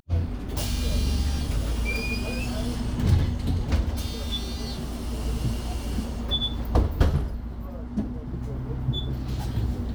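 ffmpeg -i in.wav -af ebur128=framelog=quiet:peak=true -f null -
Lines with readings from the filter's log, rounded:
Integrated loudness:
  I:         -28.3 LUFS
  Threshold: -38.3 LUFS
Loudness range:
  LRA:         2.3 LU
  Threshold: -48.0 LUFS
  LRA low:   -29.2 LUFS
  LRA high:  -26.9 LUFS
True peak:
  Peak:       -8.4 dBFS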